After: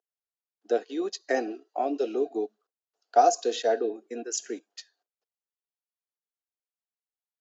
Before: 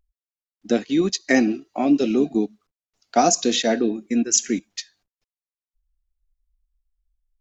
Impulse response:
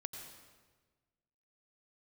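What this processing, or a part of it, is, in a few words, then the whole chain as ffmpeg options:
phone speaker on a table: -af "highpass=frequency=350:width=0.5412,highpass=frequency=350:width=1.3066,equalizer=frequency=450:width_type=q:width=4:gain=9,equalizer=frequency=720:width_type=q:width=4:gain=8,equalizer=frequency=1500:width_type=q:width=4:gain=4,equalizer=frequency=2200:width_type=q:width=4:gain=-10,equalizer=frequency=3700:width_type=q:width=4:gain=-4,equalizer=frequency=5800:width_type=q:width=4:gain=-5,lowpass=frequency=7100:width=0.5412,lowpass=frequency=7100:width=1.3066,volume=-8.5dB"

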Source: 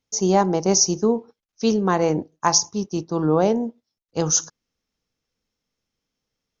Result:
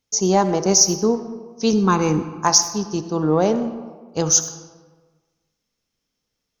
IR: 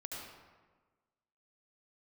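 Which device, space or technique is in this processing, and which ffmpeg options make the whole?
saturated reverb return: -filter_complex "[0:a]asettb=1/sr,asplit=3[link_01][link_02][link_03];[link_01]atrim=end=1.734[link_04];[link_02]atrim=start=1.73:end=2.35,asetpts=PTS-STARTPTS,afade=type=in:duration=0.004:curve=qsin,afade=type=out:start_time=0.616:duration=0.004:curve=qsin,aecho=1:1:0.8:0.83,atrim=end_sample=27342[link_05];[link_03]atrim=start=2.346[link_06];[link_04][link_05]acrossfade=duration=0.004:curve1=hsin:curve2=qsin[link_07];[link_07][link_06]acrossfade=duration=0.004:curve1=qsin:curve2=hsin,highshelf=frequency=4300:gain=5,asplit=2[link_08][link_09];[1:a]atrim=start_sample=2205[link_10];[link_09][link_10]afir=irnorm=-1:irlink=0,asoftclip=type=tanh:threshold=-16dB,volume=-5.5dB[link_11];[link_08][link_11]amix=inputs=2:normalize=0,volume=-1dB"

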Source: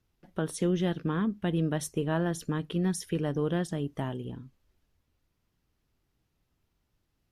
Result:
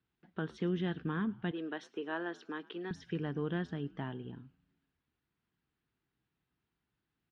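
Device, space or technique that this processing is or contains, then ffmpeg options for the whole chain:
frequency-shifting delay pedal into a guitar cabinet: -filter_complex "[0:a]asplit=5[link_01][link_02][link_03][link_04][link_05];[link_02]adelay=107,afreqshift=-100,volume=-22.5dB[link_06];[link_03]adelay=214,afreqshift=-200,volume=-27.5dB[link_07];[link_04]adelay=321,afreqshift=-300,volume=-32.6dB[link_08];[link_05]adelay=428,afreqshift=-400,volume=-37.6dB[link_09];[link_01][link_06][link_07][link_08][link_09]amix=inputs=5:normalize=0,highpass=87,equalizer=frequency=91:width_type=q:width=4:gain=-8,equalizer=frequency=570:width_type=q:width=4:gain=-9,equalizer=frequency=1600:width_type=q:width=4:gain=5,lowpass=frequency=4100:width=0.5412,lowpass=frequency=4100:width=1.3066,asettb=1/sr,asplit=3[link_10][link_11][link_12];[link_10]atrim=end=1.514[link_13];[link_11]atrim=start=1.51:end=2.91,asetpts=PTS-STARTPTS,afade=type=in:duration=0.004:curve=qsin,afade=type=out:start_time=1.396:duration=0.004:curve=qsin,highpass=frequency=300:width=0.5412,highpass=frequency=300:width=1.3066[link_14];[link_12]atrim=start=2.906[link_15];[link_13][link_14]acrossfade=duration=0.004:curve1=hsin:curve2=qsin[link_16];[link_16][link_15]acrossfade=duration=0.004:curve1=qsin:curve2=hsin,volume=-5.5dB"

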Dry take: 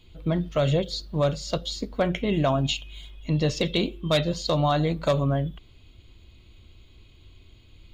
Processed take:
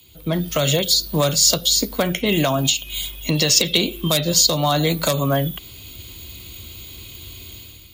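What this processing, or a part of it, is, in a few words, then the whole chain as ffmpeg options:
FM broadcast chain: -filter_complex "[0:a]highpass=63,dynaudnorm=framelen=130:gausssize=7:maxgain=12.5dB,acrossover=split=140|320|850[link_01][link_02][link_03][link_04];[link_01]acompressor=threshold=-33dB:ratio=4[link_05];[link_02]acompressor=threshold=-23dB:ratio=4[link_06];[link_03]acompressor=threshold=-22dB:ratio=4[link_07];[link_04]acompressor=threshold=-23dB:ratio=4[link_08];[link_05][link_06][link_07][link_08]amix=inputs=4:normalize=0,aemphasis=mode=production:type=50fm,alimiter=limit=-10dB:level=0:latency=1:release=270,asoftclip=type=hard:threshold=-11.5dB,lowpass=frequency=15000:width=0.5412,lowpass=frequency=15000:width=1.3066,aemphasis=mode=production:type=50fm,asettb=1/sr,asplit=3[link_09][link_10][link_11];[link_09]atrim=end=3.374[link_12];[link_10]atrim=start=3.37:end=4.1,asetpts=PTS-STARTPTS,afade=type=in:duration=0.004:curve=qsin,afade=type=out:start_time=0.726:duration=0.004:curve=qsin,equalizer=frequency=2500:width=0.61:gain=3.5[link_13];[link_11]atrim=start=4.096[link_14];[link_12][link_13]acrossfade=duration=0.004:curve1=hsin:curve2=qsin[link_15];[link_15][link_14]acrossfade=duration=0.004:curve1=qsin:curve2=hsin,volume=1.5dB"

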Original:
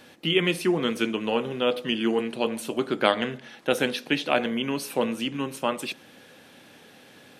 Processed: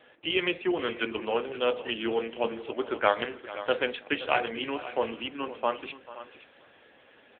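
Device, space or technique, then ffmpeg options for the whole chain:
satellite phone: -filter_complex "[0:a]asettb=1/sr,asplit=3[link_01][link_02][link_03];[link_01]atrim=end=0.724[link_04];[link_02]atrim=start=0.72:end=1.12,asetpts=PTS-STARTPTS,afade=type=in:duration=0.004:curve=qsin,afade=type=out:start_time=0.396:duration=0.004:curve=qsin,equalizer=frequency=1600:width_type=o:width=0.4:gain=2.5[link_05];[link_03]atrim=start=1.116[link_06];[link_04][link_05]acrossfade=duration=0.004:curve1=hsin:curve2=qsin[link_07];[link_07][link_06]acrossfade=duration=0.004:curve1=qsin:curve2=hsin,asettb=1/sr,asplit=3[link_08][link_09][link_10];[link_08]atrim=end=4.184[link_11];[link_09]atrim=start=4.18:end=4.66,asetpts=PTS-STARTPTS,afade=type=in:duration=0.004:curve=qsin,afade=type=out:start_time=0.476:duration=0.004:curve=qsin,asplit=2[link_12][link_13];[link_13]adelay=19,volume=-3.5dB[link_14];[link_12][link_14]amix=inputs=2:normalize=0,atrim=end_sample=21168[link_15];[link_10]atrim=start=4.656[link_16];[link_11][link_15]acrossfade=duration=0.004:curve1=hsin:curve2=qsin[link_17];[link_17][link_16]acrossfade=duration=0.004:curve1=qsin:curve2=hsin,highpass=390,lowpass=3300,aecho=1:1:438:0.133,aecho=1:1:520:0.178" -ar 8000 -c:a libopencore_amrnb -b:a 6700

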